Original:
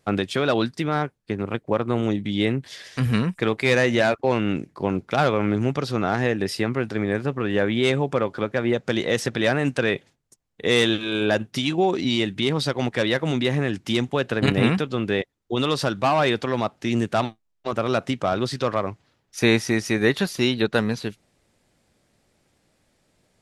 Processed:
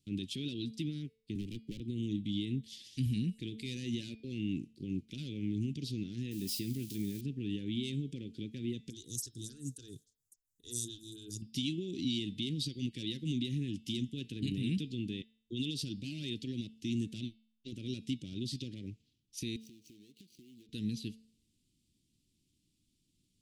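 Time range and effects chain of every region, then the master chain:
0:01.35–0:01.80: hard clipping −23.5 dBFS + multiband upward and downward compressor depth 100%
0:06.31–0:07.21: spike at every zero crossing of −25.5 dBFS + double-tracking delay 15 ms −13 dB
0:08.90–0:11.42: drawn EQ curve 120 Hz 0 dB, 210 Hz −12 dB, 430 Hz −7 dB, 730 Hz −25 dB, 1,300 Hz +7 dB, 2,200 Hz −29 dB, 4,000 Hz −2 dB, 6,700 Hz +14 dB + phaser with staggered stages 3.6 Hz
0:19.56–0:20.69: running median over 25 samples + high-pass filter 590 Hz 6 dB per octave + downward compressor 16 to 1, threshold −40 dBFS
whole clip: brickwall limiter −14.5 dBFS; Chebyshev band-stop filter 300–3,000 Hz, order 3; hum removal 222.2 Hz, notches 24; level −8.5 dB

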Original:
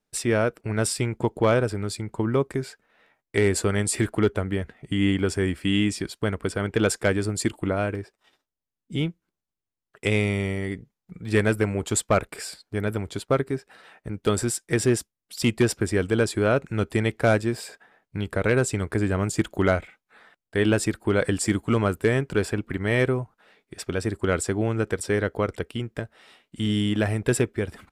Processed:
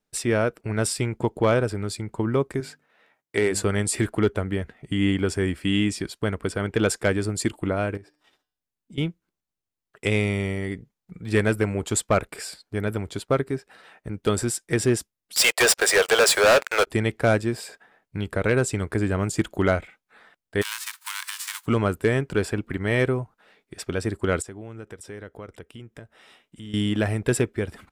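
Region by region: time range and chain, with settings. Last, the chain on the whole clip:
0:02.60–0:03.63: high-pass filter 150 Hz 6 dB per octave + mains-hum notches 50/100/150/200/250/300 Hz
0:07.97–0:08.98: downward compressor 4 to 1, threshold −43 dBFS + hum removal 150 Hz, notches 37
0:15.36–0:16.87: Butterworth high-pass 490 Hz 48 dB per octave + leveller curve on the samples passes 5 + upward compression, threshold −25 dBFS
0:20.61–0:21.65: spectral envelope flattened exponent 0.3 + Butterworth high-pass 930 Hz 72 dB per octave + downward compressor 2.5 to 1, threshold −32 dBFS
0:24.42–0:26.74: notch filter 4,400 Hz, Q 8.1 + downward compressor 2 to 1, threshold −47 dBFS
whole clip: no processing

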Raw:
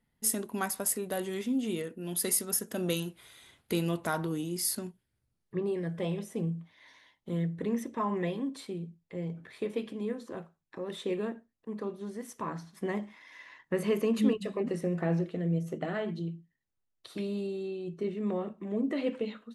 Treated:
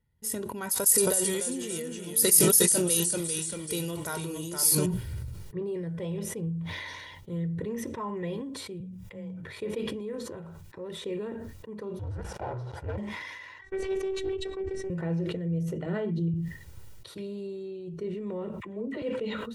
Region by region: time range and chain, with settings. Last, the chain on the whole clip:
0:00.71–0:04.86: bass and treble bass −6 dB, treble +13 dB + delay with pitch and tempo change per echo 267 ms, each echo −1 semitone, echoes 3, each echo −6 dB
0:08.80–0:09.43: parametric band 360 Hz −8 dB 0.6 octaves + notch filter 4,300 Hz, Q 8.6 + frequency shifter +17 Hz
0:11.99–0:12.98: frequency shifter −290 Hz + leveller curve on the samples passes 5 + resonant band-pass 600 Hz, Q 1.3
0:13.61–0:14.90: low-pass filter 8,000 Hz 24 dB per octave + phases set to zero 383 Hz + highs frequency-modulated by the lows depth 0.16 ms
0:15.86–0:16.34: high-pass filter 130 Hz + low-shelf EQ 490 Hz +10 dB
0:18.60–0:19.02: high-shelf EQ 4,100 Hz −6 dB + all-pass dispersion lows, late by 53 ms, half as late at 830 Hz
whole clip: parametric band 88 Hz +14 dB 2 octaves; comb filter 2.1 ms, depth 50%; level that may fall only so fast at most 26 dB per second; level −6 dB

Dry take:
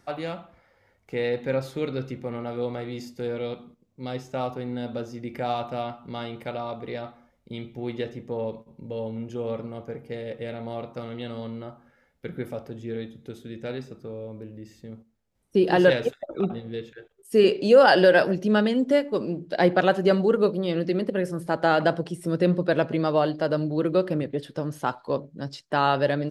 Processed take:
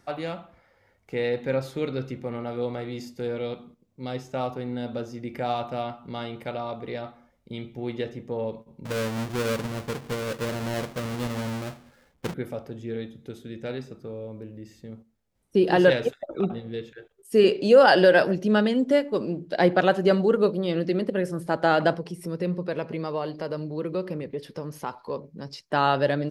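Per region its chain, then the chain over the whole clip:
0:08.85–0:12.34: each half-wave held at its own peak + high-shelf EQ 8,400 Hz −4.5 dB
0:21.94–0:25.69: EQ curve with evenly spaced ripples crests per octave 0.84, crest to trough 6 dB + downward compressor 1.5 to 1, threshold −36 dBFS
whole clip: no processing

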